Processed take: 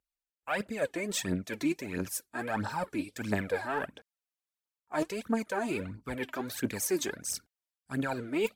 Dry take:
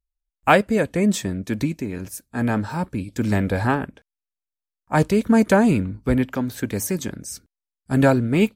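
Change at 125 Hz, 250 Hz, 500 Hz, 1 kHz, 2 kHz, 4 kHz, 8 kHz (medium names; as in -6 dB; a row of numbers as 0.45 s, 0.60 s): -17.5 dB, -14.0 dB, -11.5 dB, -12.0 dB, -9.5 dB, -6.0 dB, -4.0 dB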